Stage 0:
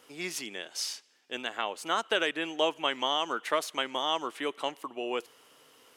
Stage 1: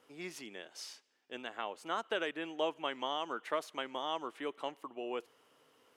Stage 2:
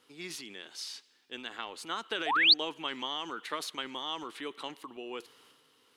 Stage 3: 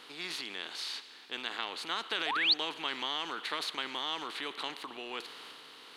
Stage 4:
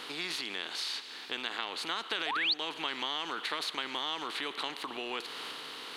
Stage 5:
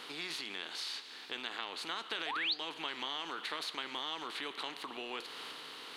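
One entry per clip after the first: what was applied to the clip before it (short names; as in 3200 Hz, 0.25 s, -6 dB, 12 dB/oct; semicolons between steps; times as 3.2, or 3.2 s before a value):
high shelf 2500 Hz -9 dB; gain -5.5 dB
transient shaper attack +2 dB, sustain +7 dB; painted sound rise, 2.26–2.54, 610–4900 Hz -26 dBFS; fifteen-band EQ 630 Hz -9 dB, 4000 Hz +9 dB, 10000 Hz +4 dB
per-bin compression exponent 0.6; gain -6 dB
compressor 2:1, threshold -47 dBFS, peak gain reduction 13 dB; gain +9 dB
flange 0.7 Hz, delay 4.7 ms, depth 8.6 ms, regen -80%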